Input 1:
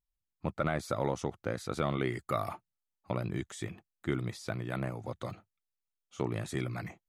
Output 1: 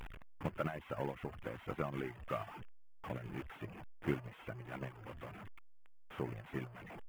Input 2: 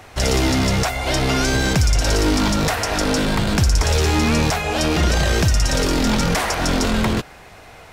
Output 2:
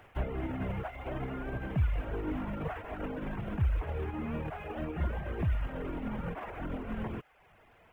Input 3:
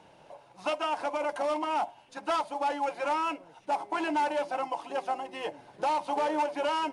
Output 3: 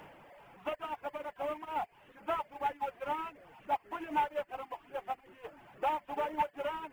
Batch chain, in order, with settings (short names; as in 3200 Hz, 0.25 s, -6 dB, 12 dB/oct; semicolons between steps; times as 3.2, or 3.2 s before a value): delta modulation 16 kbps, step -28.5 dBFS; bit-crush 8-bit; limiter -19.5 dBFS; high shelf 2200 Hz -5.5 dB; reverb removal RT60 0.71 s; upward expander 2.5:1, over -43 dBFS